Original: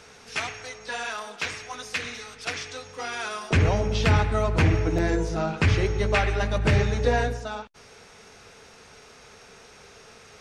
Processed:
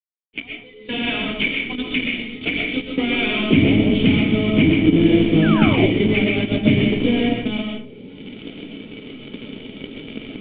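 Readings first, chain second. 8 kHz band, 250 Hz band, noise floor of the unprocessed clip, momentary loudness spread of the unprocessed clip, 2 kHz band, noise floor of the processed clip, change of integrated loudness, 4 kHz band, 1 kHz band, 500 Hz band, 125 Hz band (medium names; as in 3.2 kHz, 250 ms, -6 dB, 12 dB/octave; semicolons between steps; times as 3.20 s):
under -40 dB, +15.0 dB, -50 dBFS, 13 LU, +6.5 dB, -42 dBFS, +7.5 dB, +10.0 dB, -1.5 dB, +5.0 dB, +2.5 dB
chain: recorder AGC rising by 19 dB/s; high-pass 120 Hz 24 dB/octave; spectral noise reduction 20 dB; dynamic bell 2.1 kHz, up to +5 dB, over -30 dBFS, Q 3.2; companded quantiser 2-bit; cascade formant filter i; painted sound fall, 5.42–5.93 s, 270–1800 Hz -29 dBFS; algorithmic reverb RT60 0.44 s, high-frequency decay 0.65×, pre-delay 85 ms, DRR 0.5 dB; trim +1 dB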